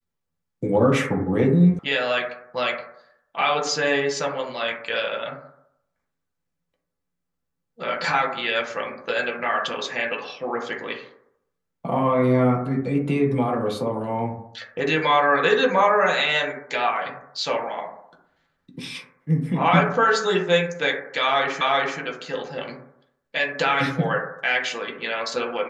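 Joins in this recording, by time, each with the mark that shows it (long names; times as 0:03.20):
0:01.79: cut off before it has died away
0:21.61: the same again, the last 0.38 s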